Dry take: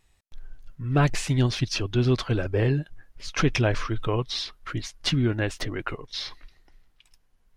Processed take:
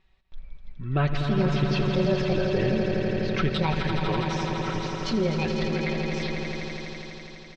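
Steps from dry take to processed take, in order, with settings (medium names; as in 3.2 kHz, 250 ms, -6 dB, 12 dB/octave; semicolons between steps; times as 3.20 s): pitch shift switched off and on +7 st, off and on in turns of 389 ms; low-pass 4.3 kHz 24 dB/octave; comb 5.3 ms, depth 52%; echo with a slow build-up 83 ms, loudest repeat 5, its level -9 dB; in parallel at +2 dB: peak limiter -17.5 dBFS, peak gain reduction 10 dB; on the sum: trim -8.5 dB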